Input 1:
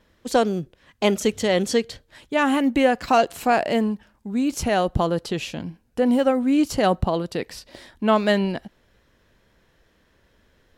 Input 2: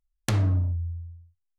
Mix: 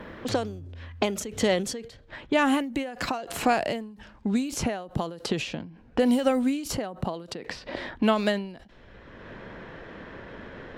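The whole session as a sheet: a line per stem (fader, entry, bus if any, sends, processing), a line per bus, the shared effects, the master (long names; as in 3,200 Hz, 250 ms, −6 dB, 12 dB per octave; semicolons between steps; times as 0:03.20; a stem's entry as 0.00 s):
+1.0 dB, 0.00 s, no send, low-pass that shuts in the quiet parts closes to 2,000 Hz, open at −20 dBFS; every ending faded ahead of time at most 110 dB per second
−2.5 dB, 0.00 s, no send, brickwall limiter −22.5 dBFS, peak gain reduction 9 dB; soft clipping −25 dBFS, distortion −19 dB; automatic ducking −13 dB, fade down 0.65 s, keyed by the first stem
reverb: not used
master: multiband upward and downward compressor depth 70%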